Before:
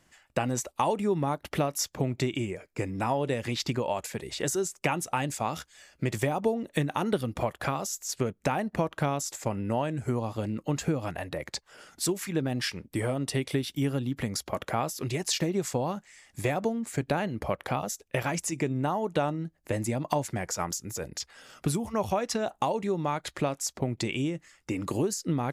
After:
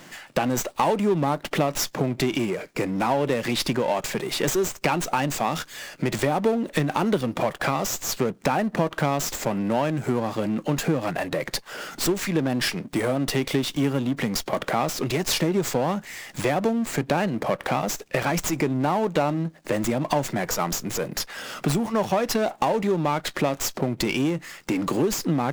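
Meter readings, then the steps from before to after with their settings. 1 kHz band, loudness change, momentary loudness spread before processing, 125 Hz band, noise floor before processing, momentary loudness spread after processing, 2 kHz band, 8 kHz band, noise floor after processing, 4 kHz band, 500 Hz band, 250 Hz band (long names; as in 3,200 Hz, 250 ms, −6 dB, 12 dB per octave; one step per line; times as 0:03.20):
+5.5 dB, +5.5 dB, 6 LU, +3.0 dB, −68 dBFS, 5 LU, +7.0 dB, +4.0 dB, −49 dBFS, +6.5 dB, +6.0 dB, +6.5 dB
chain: power curve on the samples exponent 0.7
high-pass filter 140 Hz 24 dB per octave
in parallel at −2.5 dB: downward compressor, threshold −32 dBFS, peak gain reduction 13.5 dB
on the sum: windowed peak hold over 3 samples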